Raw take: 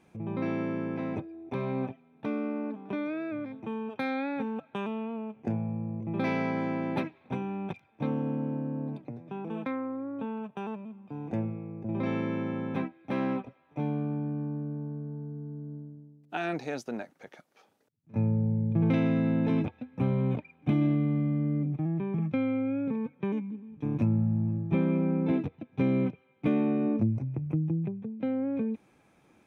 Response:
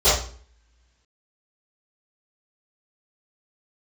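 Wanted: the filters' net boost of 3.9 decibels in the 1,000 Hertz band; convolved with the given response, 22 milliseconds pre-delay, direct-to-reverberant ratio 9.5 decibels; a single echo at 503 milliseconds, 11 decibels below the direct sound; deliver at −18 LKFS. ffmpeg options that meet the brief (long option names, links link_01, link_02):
-filter_complex "[0:a]equalizer=frequency=1000:width_type=o:gain=5,aecho=1:1:503:0.282,asplit=2[link_01][link_02];[1:a]atrim=start_sample=2205,adelay=22[link_03];[link_02][link_03]afir=irnorm=-1:irlink=0,volume=-31dB[link_04];[link_01][link_04]amix=inputs=2:normalize=0,volume=12.5dB"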